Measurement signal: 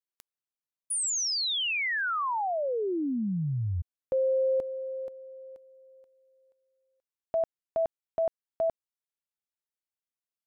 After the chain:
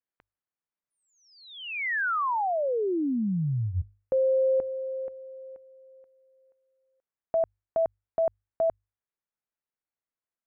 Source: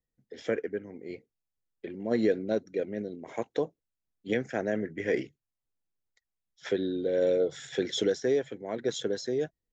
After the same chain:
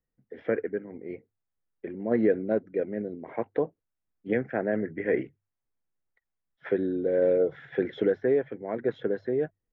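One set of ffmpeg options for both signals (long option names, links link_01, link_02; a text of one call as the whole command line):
ffmpeg -i in.wav -af "lowpass=frequency=2100:width=0.5412,lowpass=frequency=2100:width=1.3066,bandreject=frequency=50:width_type=h:width=6,bandreject=frequency=100:width_type=h:width=6,volume=2.5dB" out.wav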